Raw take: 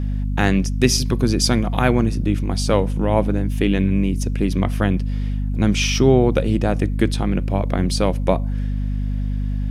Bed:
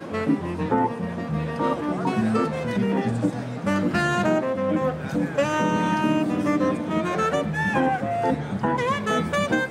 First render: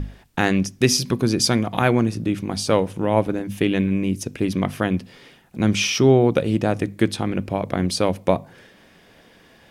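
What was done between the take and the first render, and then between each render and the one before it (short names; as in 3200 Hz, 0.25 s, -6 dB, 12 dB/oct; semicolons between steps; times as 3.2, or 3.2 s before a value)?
notches 50/100/150/200/250 Hz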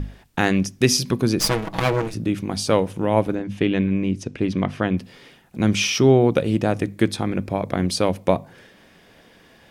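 1.39–2.14 minimum comb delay 6.2 ms; 3.35–4.98 air absorption 92 m; 7.09–7.72 notch 2900 Hz, Q 7.9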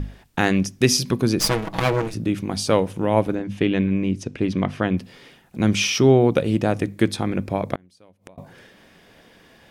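7.74–8.38 flipped gate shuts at -19 dBFS, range -32 dB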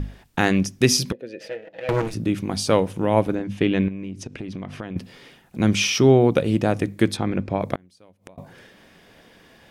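1.12–1.89 vowel filter e; 3.88–4.96 compressor 8:1, threshold -28 dBFS; 7.17–7.61 air absorption 96 m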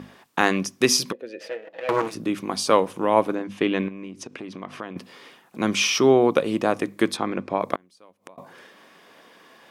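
HPF 270 Hz 12 dB/oct; bell 1100 Hz +8.5 dB 0.41 oct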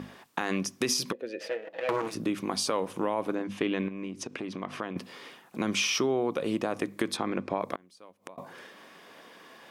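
limiter -11.5 dBFS, peak gain reduction 10 dB; compressor 2.5:1, threshold -27 dBFS, peak gain reduction 8 dB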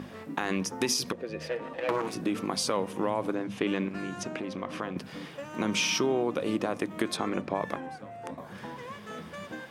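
add bed -18.5 dB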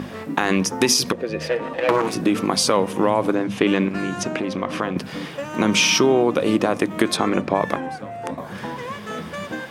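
gain +10.5 dB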